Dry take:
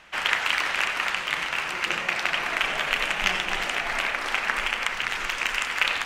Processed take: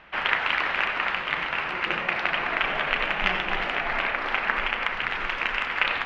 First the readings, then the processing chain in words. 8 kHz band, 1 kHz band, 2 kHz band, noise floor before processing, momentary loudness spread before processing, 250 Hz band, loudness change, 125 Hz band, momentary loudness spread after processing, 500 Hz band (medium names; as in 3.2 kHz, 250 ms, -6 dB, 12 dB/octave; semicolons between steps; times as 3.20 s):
under -15 dB, +2.0 dB, 0.0 dB, -32 dBFS, 3 LU, +3.0 dB, -0.5 dB, +3.5 dB, 3 LU, +2.5 dB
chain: distance through air 340 m; trim +3.5 dB